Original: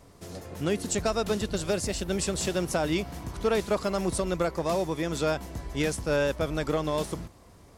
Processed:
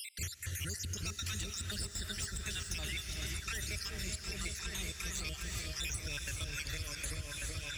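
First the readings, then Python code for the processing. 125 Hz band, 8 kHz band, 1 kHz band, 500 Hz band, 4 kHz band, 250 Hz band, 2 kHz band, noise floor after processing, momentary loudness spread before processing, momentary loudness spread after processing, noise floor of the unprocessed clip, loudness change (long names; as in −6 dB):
−7.0 dB, −3.0 dB, −19.0 dB, −25.5 dB, −2.5 dB, −19.0 dB, −5.0 dB, −48 dBFS, 8 LU, 2 LU, −53 dBFS, −10.0 dB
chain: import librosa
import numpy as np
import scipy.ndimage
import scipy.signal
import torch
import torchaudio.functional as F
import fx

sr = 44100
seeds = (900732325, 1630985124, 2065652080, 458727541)

p1 = fx.spec_dropout(x, sr, seeds[0], share_pct=59)
p2 = fx.curve_eq(p1, sr, hz=(110.0, 180.0, 850.0, 1800.0, 4200.0, 6000.0), db=(0, -19, -28, 1, 3, 8))
p3 = fx.step_gate(p2, sr, bpm=177, pattern='x.xx.xxxx', floor_db=-60.0, edge_ms=4.5)
p4 = fx.high_shelf(p3, sr, hz=10000.0, db=-6.0)
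p5 = fx.over_compress(p4, sr, threshold_db=-39.0, ratio=-1.0)
p6 = p4 + (p5 * librosa.db_to_amplitude(-1.0))
p7 = np.clip(10.0 ** (26.5 / 20.0) * p6, -1.0, 1.0) / 10.0 ** (26.5 / 20.0)
p8 = scipy.signal.sosfilt(scipy.signal.butter(2, 41.0, 'highpass', fs=sr, output='sos'), p7)
p9 = p8 + fx.echo_opening(p8, sr, ms=381, hz=400, octaves=1, feedback_pct=70, wet_db=0, dry=0)
p10 = fx.rev_gated(p9, sr, seeds[1], gate_ms=450, shape='rising', drr_db=7.0)
p11 = fx.band_squash(p10, sr, depth_pct=100)
y = p11 * librosa.db_to_amplitude(-7.0)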